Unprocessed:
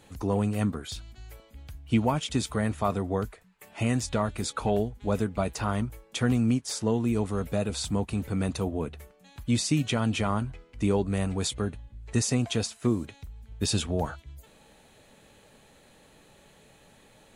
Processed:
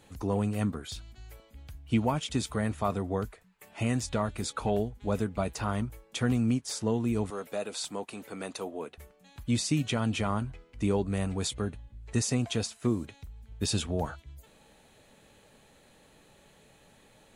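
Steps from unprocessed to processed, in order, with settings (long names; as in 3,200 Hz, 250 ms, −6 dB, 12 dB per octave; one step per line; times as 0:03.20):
0:07.30–0:08.98: high-pass filter 380 Hz 12 dB per octave
level −2.5 dB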